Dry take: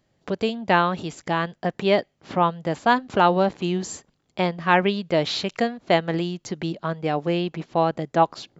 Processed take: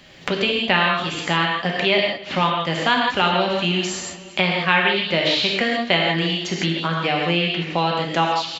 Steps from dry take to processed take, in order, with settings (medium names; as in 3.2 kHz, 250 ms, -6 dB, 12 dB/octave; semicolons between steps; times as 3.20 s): peaking EQ 2.8 kHz +14.5 dB 1.7 oct; on a send: feedback delay 236 ms, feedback 48%, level -23 dB; on the sum: gated-style reverb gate 190 ms flat, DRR -1.5 dB; three bands compressed up and down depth 70%; trim -5.5 dB